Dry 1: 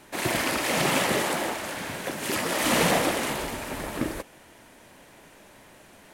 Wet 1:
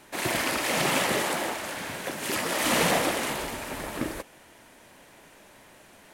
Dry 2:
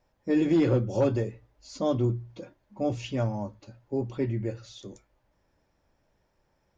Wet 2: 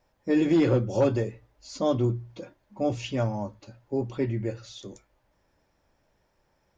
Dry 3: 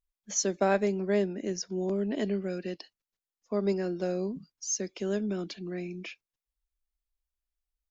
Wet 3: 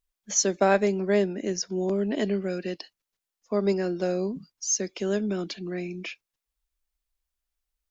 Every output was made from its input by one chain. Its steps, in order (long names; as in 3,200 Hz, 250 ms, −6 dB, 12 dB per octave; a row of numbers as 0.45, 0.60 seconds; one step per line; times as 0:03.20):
low-shelf EQ 430 Hz −3 dB
loudness normalisation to −27 LKFS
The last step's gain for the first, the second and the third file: −0.5, +3.0, +5.5 decibels